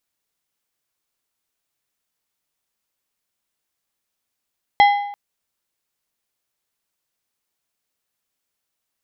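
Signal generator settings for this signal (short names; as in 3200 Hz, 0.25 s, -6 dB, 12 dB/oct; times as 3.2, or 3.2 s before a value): metal hit plate, length 0.34 s, lowest mode 814 Hz, decay 0.81 s, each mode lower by 7.5 dB, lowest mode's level -7 dB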